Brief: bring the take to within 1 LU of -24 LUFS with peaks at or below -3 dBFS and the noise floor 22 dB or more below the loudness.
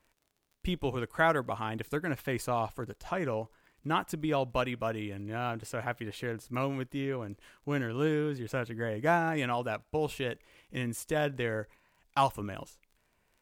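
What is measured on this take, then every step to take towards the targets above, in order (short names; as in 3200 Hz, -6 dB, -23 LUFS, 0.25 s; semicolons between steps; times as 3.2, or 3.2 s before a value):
ticks 30/s; loudness -33.0 LUFS; peak -12.5 dBFS; loudness target -24.0 LUFS
-> de-click; gain +9 dB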